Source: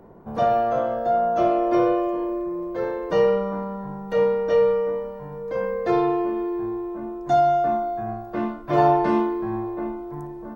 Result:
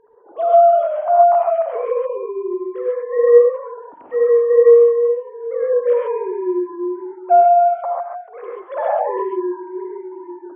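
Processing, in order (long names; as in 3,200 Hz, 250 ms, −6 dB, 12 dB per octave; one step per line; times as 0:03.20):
three sine waves on the formant tracks
reverb whose tail is shaped and stops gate 160 ms rising, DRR −2.5 dB
level +2 dB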